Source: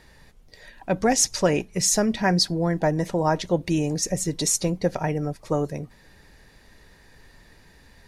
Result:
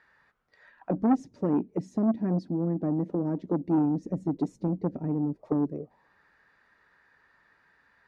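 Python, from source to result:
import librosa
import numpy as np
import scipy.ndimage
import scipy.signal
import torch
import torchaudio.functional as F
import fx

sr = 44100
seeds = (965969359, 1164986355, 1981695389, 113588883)

y = fx.highpass(x, sr, hz=110.0, slope=6, at=(1.22, 3.78))
y = fx.auto_wah(y, sr, base_hz=270.0, top_hz=1500.0, q=3.4, full_db=-22.5, direction='down')
y = fx.low_shelf(y, sr, hz=340.0, db=10.5)
y = fx.transformer_sat(y, sr, knee_hz=530.0)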